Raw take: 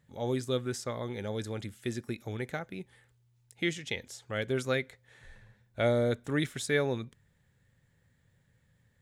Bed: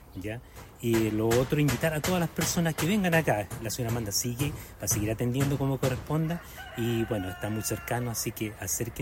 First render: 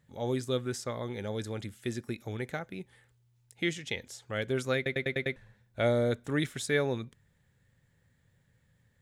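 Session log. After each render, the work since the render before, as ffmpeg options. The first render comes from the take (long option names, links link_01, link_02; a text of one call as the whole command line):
ffmpeg -i in.wav -filter_complex "[0:a]asplit=7[link_01][link_02][link_03][link_04][link_05][link_06][link_07];[link_01]atrim=end=4.862[link_08];[link_02]atrim=start=4.758:end=4.862[link_09];[link_03]atrim=start=4.758:end=4.862[link_10];[link_04]atrim=start=4.758:end=4.862[link_11];[link_05]atrim=start=4.758:end=4.862[link_12];[link_06]atrim=start=4.758:end=4.862[link_13];[link_07]atrim=start=5.358[link_14];[link_08][link_09]acrossfade=duration=0.004:curve1=hsin:curve2=hsin[link_15];[link_15][link_10]acrossfade=duration=0.004:curve1=hsin:curve2=hsin[link_16];[link_16][link_11]acrossfade=duration=0.004:curve1=hsin:curve2=hsin[link_17];[link_17][link_12]acrossfade=duration=0.004:curve1=hsin:curve2=hsin[link_18];[link_18][link_13]acrossfade=duration=0.004:curve1=hsin:curve2=hsin[link_19];[link_19][link_14]acrossfade=duration=0.004:curve1=hsin:curve2=hsin" out.wav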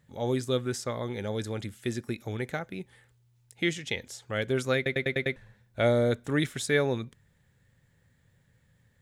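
ffmpeg -i in.wav -af "volume=3dB" out.wav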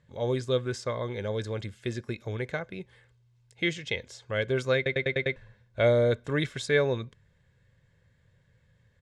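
ffmpeg -i in.wav -af "lowpass=5600,aecho=1:1:1.9:0.4" out.wav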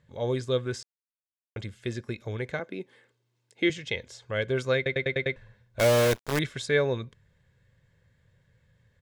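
ffmpeg -i in.wav -filter_complex "[0:a]asettb=1/sr,asplit=3[link_01][link_02][link_03];[link_01]atrim=end=2.594[link_04];[link_02]atrim=start=2.59:end=3.7,asetpts=PTS-STARTPTS,afade=type=in:duration=0.004:curve=qsin,afade=type=out:start_time=1.106:duration=0.004:curve=qsin,highpass=frequency=270:width_type=q:width=2.6[link_05];[link_03]atrim=start=3.696[link_06];[link_04][link_05]acrossfade=duration=0.004:curve1=hsin:curve2=qsin[link_07];[link_07][link_06]acrossfade=duration=0.004:curve1=qsin:curve2=hsin,asettb=1/sr,asplit=3[link_08][link_09][link_10];[link_08]atrim=end=5.794[link_11];[link_09]atrim=start=5.79:end=6.39,asetpts=PTS-STARTPTS,afade=type=in:duration=0.004:curve=qsin,afade=type=out:start_time=0.596:duration=0.004:curve=qsin,acrusher=bits=5:dc=4:mix=0:aa=0.000001[link_12];[link_10]atrim=start=6.386[link_13];[link_11][link_12]acrossfade=duration=0.004:curve1=hsin:curve2=qsin[link_14];[link_14][link_13]acrossfade=duration=0.004:curve1=qsin:curve2=hsin,asplit=3[link_15][link_16][link_17];[link_15]atrim=end=0.83,asetpts=PTS-STARTPTS,afade=type=out:start_time=0.826:duration=0.004:curve=hsin[link_18];[link_16]atrim=start=0.83:end=1.56,asetpts=PTS-STARTPTS,volume=0[link_19];[link_17]atrim=start=1.56,asetpts=PTS-STARTPTS,afade=type=in:duration=0.004:curve=hsin[link_20];[link_18][link_19][link_20]concat=n=3:v=0:a=1" out.wav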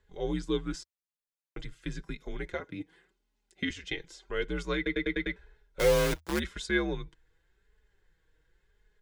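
ffmpeg -i in.wav -af "afreqshift=-81,flanger=delay=4.7:depth=1.7:regen=18:speed=0.9:shape=sinusoidal" out.wav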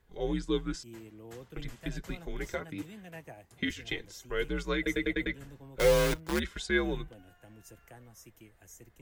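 ffmpeg -i in.wav -i bed.wav -filter_complex "[1:a]volume=-22.5dB[link_01];[0:a][link_01]amix=inputs=2:normalize=0" out.wav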